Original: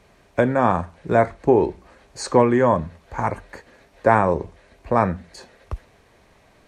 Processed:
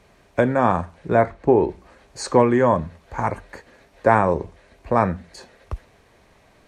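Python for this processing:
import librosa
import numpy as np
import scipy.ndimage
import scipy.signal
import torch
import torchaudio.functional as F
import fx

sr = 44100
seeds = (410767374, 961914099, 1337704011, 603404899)

y = fx.high_shelf(x, sr, hz=fx.line((1.07, 6600.0), (1.68, 4200.0)), db=-11.0, at=(1.07, 1.68), fade=0.02)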